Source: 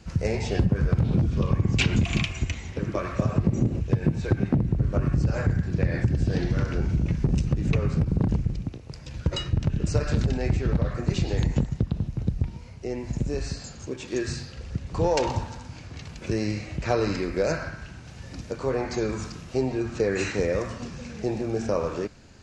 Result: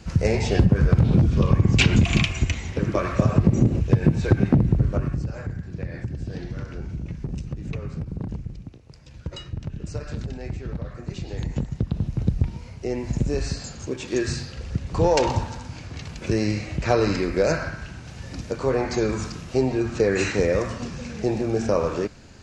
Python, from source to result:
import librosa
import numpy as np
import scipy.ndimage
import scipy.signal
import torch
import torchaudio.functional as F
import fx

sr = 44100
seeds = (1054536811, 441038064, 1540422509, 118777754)

y = fx.gain(x, sr, db=fx.line((4.75, 5.0), (5.36, -7.5), (11.22, -7.5), (12.13, 4.0)))